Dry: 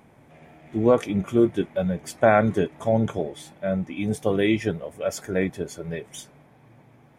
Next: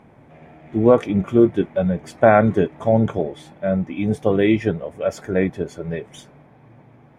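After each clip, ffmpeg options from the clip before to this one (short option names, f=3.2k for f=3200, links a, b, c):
-af "lowpass=f=2k:p=1,volume=5dB"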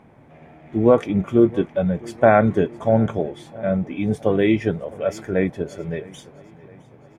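-af "aecho=1:1:662|1324|1986|2648:0.0794|0.0421|0.0223|0.0118,volume=-1dB"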